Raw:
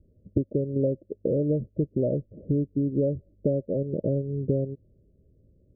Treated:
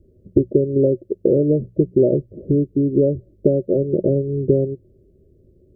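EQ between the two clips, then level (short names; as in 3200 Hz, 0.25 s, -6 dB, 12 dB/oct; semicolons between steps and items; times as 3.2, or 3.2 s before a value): bell 370 Hz +12 dB 0.29 oct; notches 60/120/180 Hz; +6.0 dB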